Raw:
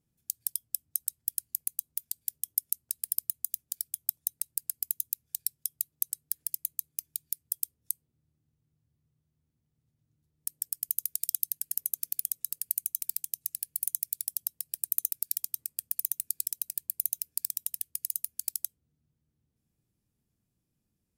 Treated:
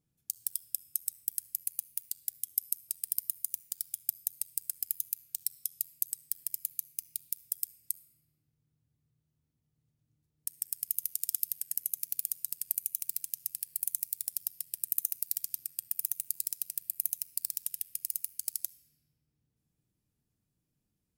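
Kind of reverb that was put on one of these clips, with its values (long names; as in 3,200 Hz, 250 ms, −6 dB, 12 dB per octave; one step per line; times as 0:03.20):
rectangular room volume 3,100 cubic metres, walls mixed, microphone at 0.45 metres
level −2 dB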